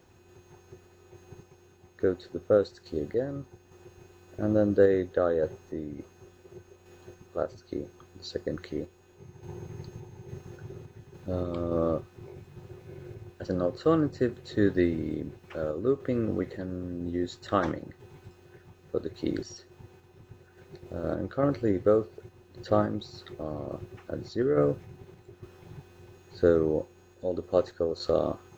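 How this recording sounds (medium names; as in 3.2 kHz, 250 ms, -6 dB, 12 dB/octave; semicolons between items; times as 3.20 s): a quantiser's noise floor 12-bit, dither triangular; random-step tremolo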